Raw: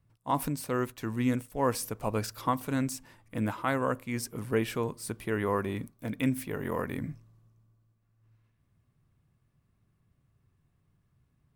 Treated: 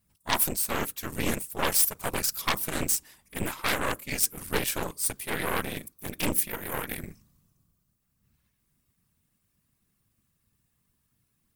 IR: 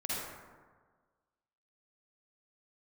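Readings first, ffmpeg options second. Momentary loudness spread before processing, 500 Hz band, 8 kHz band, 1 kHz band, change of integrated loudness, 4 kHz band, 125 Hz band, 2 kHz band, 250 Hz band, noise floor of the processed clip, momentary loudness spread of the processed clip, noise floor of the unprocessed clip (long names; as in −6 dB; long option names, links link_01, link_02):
8 LU, −2.5 dB, +13.5 dB, 0.0 dB, +4.0 dB, +11.5 dB, −4.5 dB, +6.0 dB, −4.5 dB, −75 dBFS, 11 LU, −73 dBFS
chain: -af "afftfilt=real='hypot(re,im)*cos(2*PI*random(0))':imag='hypot(re,im)*sin(2*PI*random(1))':win_size=512:overlap=0.75,aeval=exprs='0.106*(cos(1*acos(clip(val(0)/0.106,-1,1)))-cos(1*PI/2))+0.0335*(cos(6*acos(clip(val(0)/0.106,-1,1)))-cos(6*PI/2))':channel_layout=same,crystalizer=i=7:c=0"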